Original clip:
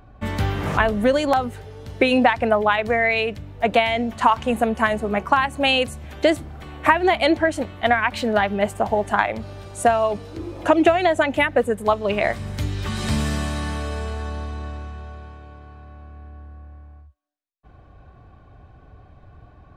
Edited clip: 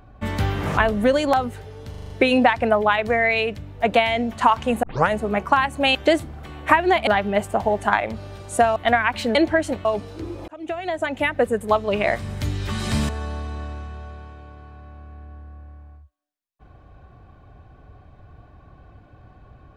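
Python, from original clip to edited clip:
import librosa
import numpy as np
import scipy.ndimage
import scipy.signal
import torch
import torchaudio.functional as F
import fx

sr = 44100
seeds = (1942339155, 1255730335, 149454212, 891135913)

y = fx.edit(x, sr, fx.stutter(start_s=1.9, slice_s=0.04, count=6),
    fx.tape_start(start_s=4.63, length_s=0.27),
    fx.cut(start_s=5.75, length_s=0.37),
    fx.swap(start_s=7.24, length_s=0.5, other_s=8.33, other_length_s=1.69),
    fx.fade_in_span(start_s=10.65, length_s=1.07),
    fx.cut(start_s=13.26, length_s=0.87), tone=tone)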